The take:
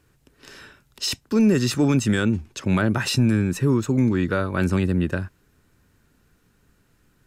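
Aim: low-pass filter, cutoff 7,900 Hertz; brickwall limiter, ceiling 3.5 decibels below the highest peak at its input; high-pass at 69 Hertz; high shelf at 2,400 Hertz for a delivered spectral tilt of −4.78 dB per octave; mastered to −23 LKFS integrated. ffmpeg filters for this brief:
ffmpeg -i in.wav -af "highpass=69,lowpass=7900,highshelf=frequency=2400:gain=8,volume=-0.5dB,alimiter=limit=-13dB:level=0:latency=1" out.wav

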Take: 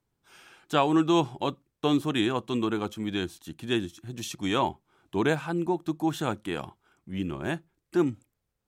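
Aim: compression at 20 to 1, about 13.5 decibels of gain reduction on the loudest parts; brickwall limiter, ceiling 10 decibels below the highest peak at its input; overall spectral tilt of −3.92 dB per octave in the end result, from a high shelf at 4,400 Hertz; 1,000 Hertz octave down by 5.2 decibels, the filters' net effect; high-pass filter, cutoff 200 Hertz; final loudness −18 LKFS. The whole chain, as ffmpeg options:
ffmpeg -i in.wav -af "highpass=200,equalizer=frequency=1000:width_type=o:gain=-7,highshelf=frequency=4400:gain=7.5,acompressor=threshold=-33dB:ratio=20,volume=23.5dB,alimiter=limit=-5.5dB:level=0:latency=1" out.wav

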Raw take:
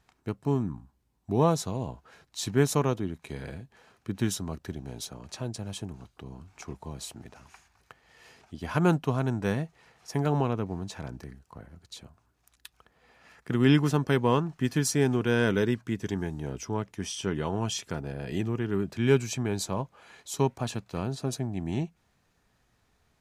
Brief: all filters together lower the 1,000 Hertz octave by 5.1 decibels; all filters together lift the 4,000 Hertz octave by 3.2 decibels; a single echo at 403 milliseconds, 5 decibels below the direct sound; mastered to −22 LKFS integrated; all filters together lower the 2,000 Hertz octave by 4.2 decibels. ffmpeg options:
ffmpeg -i in.wav -af "equalizer=frequency=1000:width_type=o:gain=-5.5,equalizer=frequency=2000:width_type=o:gain=-5,equalizer=frequency=4000:width_type=o:gain=6,aecho=1:1:403:0.562,volume=7dB" out.wav

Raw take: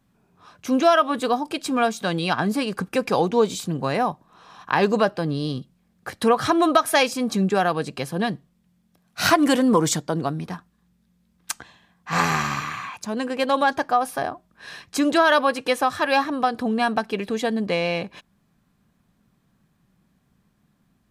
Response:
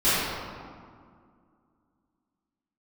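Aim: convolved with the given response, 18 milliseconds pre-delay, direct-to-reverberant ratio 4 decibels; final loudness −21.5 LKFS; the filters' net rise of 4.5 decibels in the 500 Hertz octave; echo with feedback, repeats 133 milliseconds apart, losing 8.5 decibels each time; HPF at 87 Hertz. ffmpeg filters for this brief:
-filter_complex "[0:a]highpass=87,equalizer=frequency=500:width_type=o:gain=5.5,aecho=1:1:133|266|399|532:0.376|0.143|0.0543|0.0206,asplit=2[link_01][link_02];[1:a]atrim=start_sample=2205,adelay=18[link_03];[link_02][link_03]afir=irnorm=-1:irlink=0,volume=-22dB[link_04];[link_01][link_04]amix=inputs=2:normalize=0,volume=-3.5dB"

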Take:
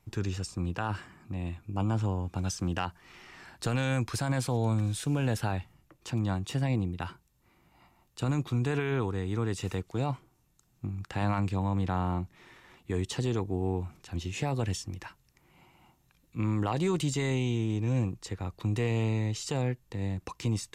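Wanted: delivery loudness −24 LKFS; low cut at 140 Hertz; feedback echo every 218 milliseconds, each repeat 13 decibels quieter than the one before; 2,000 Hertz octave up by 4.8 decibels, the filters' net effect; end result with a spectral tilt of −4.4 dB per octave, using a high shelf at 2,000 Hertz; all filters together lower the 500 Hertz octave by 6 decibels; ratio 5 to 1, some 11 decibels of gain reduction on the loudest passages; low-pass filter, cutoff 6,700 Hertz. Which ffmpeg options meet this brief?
ffmpeg -i in.wav -af "highpass=140,lowpass=6700,equalizer=frequency=500:width_type=o:gain=-8.5,highshelf=frequency=2000:gain=4.5,equalizer=frequency=2000:width_type=o:gain=4,acompressor=threshold=-40dB:ratio=5,aecho=1:1:218|436|654:0.224|0.0493|0.0108,volume=19.5dB" out.wav

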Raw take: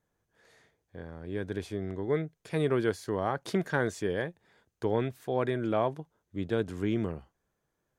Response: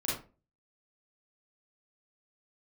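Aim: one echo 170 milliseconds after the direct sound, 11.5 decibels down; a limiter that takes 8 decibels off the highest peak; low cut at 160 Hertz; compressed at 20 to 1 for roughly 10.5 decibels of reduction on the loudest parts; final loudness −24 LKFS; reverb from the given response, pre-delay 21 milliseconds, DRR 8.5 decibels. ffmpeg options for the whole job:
-filter_complex "[0:a]highpass=160,acompressor=threshold=-33dB:ratio=20,alimiter=level_in=5.5dB:limit=-24dB:level=0:latency=1,volume=-5.5dB,aecho=1:1:170:0.266,asplit=2[link_01][link_02];[1:a]atrim=start_sample=2205,adelay=21[link_03];[link_02][link_03]afir=irnorm=-1:irlink=0,volume=-14dB[link_04];[link_01][link_04]amix=inputs=2:normalize=0,volume=17dB"

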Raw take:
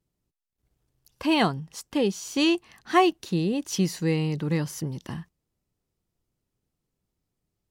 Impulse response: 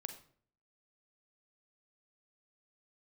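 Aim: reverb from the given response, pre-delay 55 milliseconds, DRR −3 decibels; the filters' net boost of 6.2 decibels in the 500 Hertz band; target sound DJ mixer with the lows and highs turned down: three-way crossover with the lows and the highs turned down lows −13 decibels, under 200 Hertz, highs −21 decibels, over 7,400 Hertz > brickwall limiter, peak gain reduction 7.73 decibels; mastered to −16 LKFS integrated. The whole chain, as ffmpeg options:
-filter_complex "[0:a]equalizer=frequency=500:width_type=o:gain=9,asplit=2[link_01][link_02];[1:a]atrim=start_sample=2205,adelay=55[link_03];[link_02][link_03]afir=irnorm=-1:irlink=0,volume=5.5dB[link_04];[link_01][link_04]amix=inputs=2:normalize=0,acrossover=split=200 7400:gain=0.224 1 0.0891[link_05][link_06][link_07];[link_05][link_06][link_07]amix=inputs=3:normalize=0,volume=5dB,alimiter=limit=-3.5dB:level=0:latency=1"

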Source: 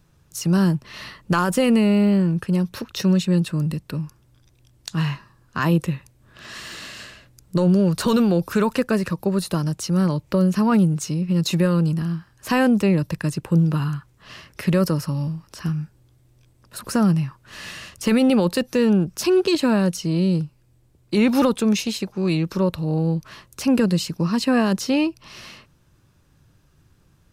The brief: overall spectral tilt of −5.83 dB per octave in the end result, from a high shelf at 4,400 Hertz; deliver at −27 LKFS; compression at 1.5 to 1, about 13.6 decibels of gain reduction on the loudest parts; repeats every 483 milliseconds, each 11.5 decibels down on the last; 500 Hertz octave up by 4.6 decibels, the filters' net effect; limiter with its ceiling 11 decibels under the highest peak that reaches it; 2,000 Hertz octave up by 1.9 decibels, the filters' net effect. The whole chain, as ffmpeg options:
ffmpeg -i in.wav -af "equalizer=frequency=500:width_type=o:gain=5.5,equalizer=frequency=2000:width_type=o:gain=3.5,highshelf=frequency=4400:gain=-6.5,acompressor=threshold=-51dB:ratio=1.5,alimiter=level_in=6dB:limit=-24dB:level=0:latency=1,volume=-6dB,aecho=1:1:483|966|1449:0.266|0.0718|0.0194,volume=12dB" out.wav

